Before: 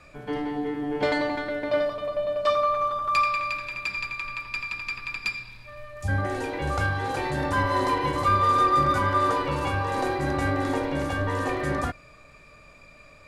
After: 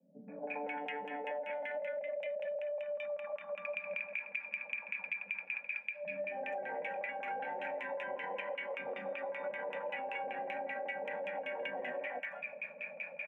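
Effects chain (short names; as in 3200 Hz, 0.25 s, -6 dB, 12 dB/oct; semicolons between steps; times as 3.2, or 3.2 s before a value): spectral repair 1.52–2.27, 340–1800 Hz after; LFO low-pass saw down 5.2 Hz 470–2800 Hz; limiter -26.5 dBFS, peak gain reduction 20 dB; steep high-pass 170 Hz 96 dB/oct; comb 3.6 ms, depth 46%; vocal rider 2 s; bell 2500 Hz +11 dB 0.42 oct; fixed phaser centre 1200 Hz, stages 6; three bands offset in time lows, mids, highs 0.28/0.5 s, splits 300/1100 Hz; compressor 12:1, threshold -39 dBFS, peak gain reduction 18 dB; gain +3 dB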